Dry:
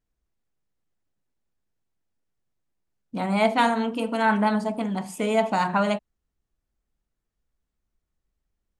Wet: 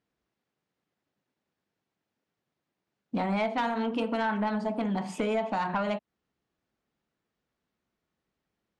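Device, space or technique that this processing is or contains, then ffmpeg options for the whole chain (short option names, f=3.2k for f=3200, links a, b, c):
AM radio: -af "highpass=160,lowpass=4.3k,acompressor=threshold=-31dB:ratio=6,asoftclip=type=tanh:threshold=-25.5dB,volume=6dB"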